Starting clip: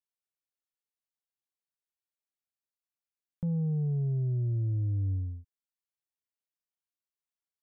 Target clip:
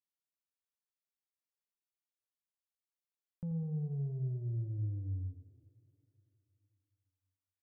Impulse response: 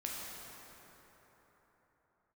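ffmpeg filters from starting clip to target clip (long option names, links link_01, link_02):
-filter_complex "[0:a]aecho=1:1:85|203|253:0.316|0.224|0.106,asplit=2[link_01][link_02];[1:a]atrim=start_sample=2205,lowshelf=frequency=170:gain=-10[link_03];[link_02][link_03]afir=irnorm=-1:irlink=0,volume=-16.5dB[link_04];[link_01][link_04]amix=inputs=2:normalize=0,volume=-8.5dB"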